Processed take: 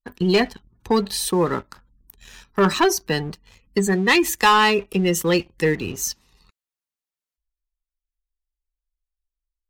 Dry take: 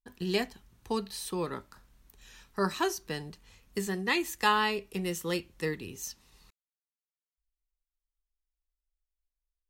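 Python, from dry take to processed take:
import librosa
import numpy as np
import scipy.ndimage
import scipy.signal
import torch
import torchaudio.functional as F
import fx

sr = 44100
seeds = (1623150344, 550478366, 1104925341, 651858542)

y = fx.spec_gate(x, sr, threshold_db=-25, keep='strong')
y = fx.leveller(y, sr, passes=2)
y = y * 10.0 ** (6.5 / 20.0)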